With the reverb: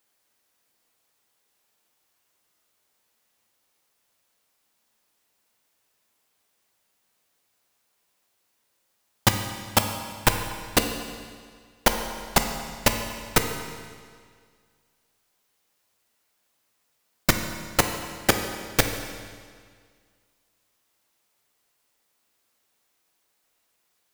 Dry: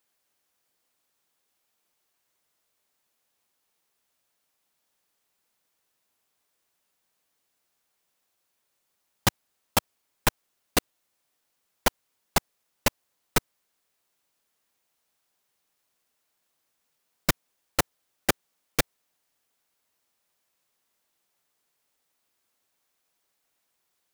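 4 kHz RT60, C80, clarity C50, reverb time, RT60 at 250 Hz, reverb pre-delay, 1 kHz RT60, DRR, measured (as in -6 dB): 1.8 s, 8.0 dB, 6.5 dB, 1.9 s, 1.9 s, 9 ms, 1.9 s, 5.0 dB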